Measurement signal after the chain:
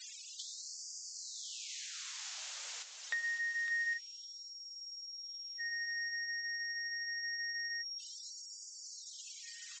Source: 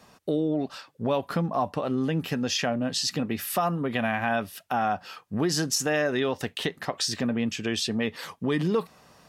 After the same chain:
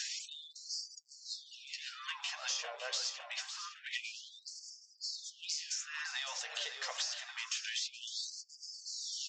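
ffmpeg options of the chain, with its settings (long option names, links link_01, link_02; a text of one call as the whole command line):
ffmpeg -i in.wav -af "aeval=exprs='val(0)+0.5*0.0188*sgn(val(0))':channel_layout=same,highpass=190,afftfilt=real='re*gte(hypot(re,im),0.00631)':imag='im*gte(hypot(re,im),0.00631)':win_size=1024:overlap=0.75,aderivative,acompressor=threshold=-48dB:ratio=12,aresample=16000,aeval=exprs='clip(val(0),-1,0.00473)':channel_layout=same,aresample=44100,flanger=delay=4.1:depth=6.8:regen=-50:speed=0.25:shape=triangular,aecho=1:1:557|1114|1671|2228|2785|3342|3899:0.335|0.201|0.121|0.0724|0.0434|0.026|0.0156,afftfilt=real='re*gte(b*sr/1024,420*pow(4600/420,0.5+0.5*sin(2*PI*0.26*pts/sr)))':imag='im*gte(b*sr/1024,420*pow(4600/420,0.5+0.5*sin(2*PI*0.26*pts/sr)))':win_size=1024:overlap=0.75,volume=17.5dB" out.wav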